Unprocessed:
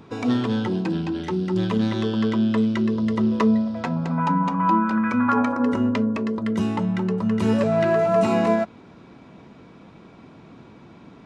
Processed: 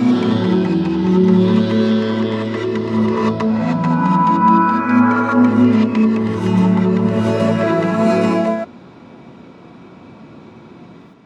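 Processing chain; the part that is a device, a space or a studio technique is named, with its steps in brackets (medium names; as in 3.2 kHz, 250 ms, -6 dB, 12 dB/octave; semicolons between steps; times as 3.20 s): high-pass 90 Hz; reverse reverb (reverse; reverberation RT60 1.4 s, pre-delay 117 ms, DRR -5.5 dB; reverse)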